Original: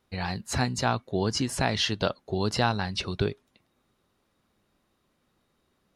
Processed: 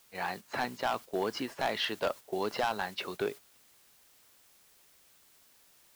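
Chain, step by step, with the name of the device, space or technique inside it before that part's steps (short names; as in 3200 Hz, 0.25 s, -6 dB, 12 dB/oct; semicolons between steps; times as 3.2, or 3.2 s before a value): aircraft radio (BPF 400–2600 Hz; hard clip -23.5 dBFS, distortion -9 dB; white noise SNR 18 dB; gate -41 dBFS, range -8 dB)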